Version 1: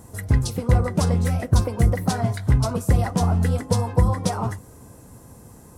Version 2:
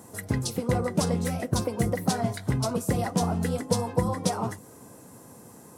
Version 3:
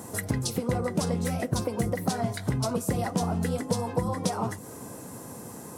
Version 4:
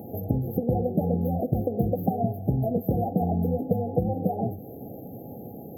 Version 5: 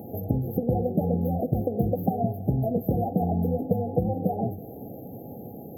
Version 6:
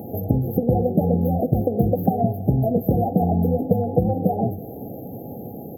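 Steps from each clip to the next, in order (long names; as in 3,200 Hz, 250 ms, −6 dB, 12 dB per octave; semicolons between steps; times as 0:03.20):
high-pass filter 180 Hz 12 dB per octave; dynamic equaliser 1,300 Hz, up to −4 dB, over −40 dBFS, Q 0.7
downward compressor 2.5 to 1, threshold −35 dBFS, peak gain reduction 11.5 dB; level +7 dB
backwards echo 504 ms −23.5 dB; brick-wall band-stop 850–12,000 Hz; level +3 dB
feedback echo with a swinging delay time 327 ms, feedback 42%, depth 122 cents, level −23 dB
far-end echo of a speakerphone 120 ms, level −26 dB; level +5.5 dB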